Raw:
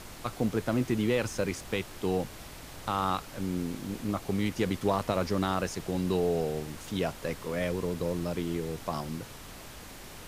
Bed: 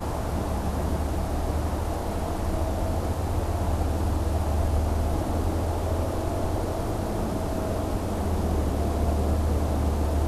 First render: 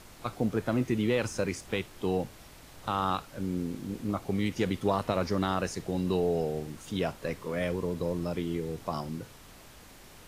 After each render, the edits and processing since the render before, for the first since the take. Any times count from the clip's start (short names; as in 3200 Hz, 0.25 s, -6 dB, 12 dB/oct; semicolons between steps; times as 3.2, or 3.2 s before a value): noise print and reduce 6 dB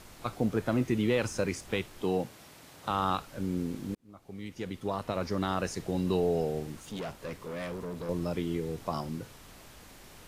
2.03–2.91 HPF 120 Hz; 3.95–5.83 fade in; 6.8–8.09 tube stage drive 33 dB, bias 0.45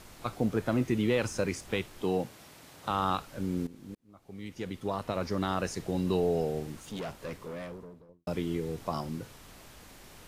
3.67–4.51 fade in, from -15.5 dB; 7.28–8.27 studio fade out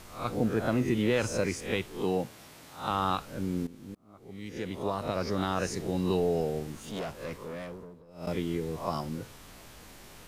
spectral swells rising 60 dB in 0.41 s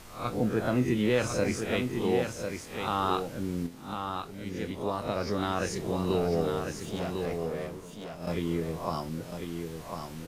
doubler 24 ms -10.5 dB; echo 1.049 s -6 dB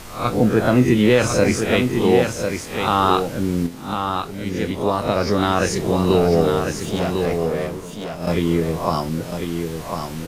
gain +11.5 dB; limiter -3 dBFS, peak gain reduction 1.5 dB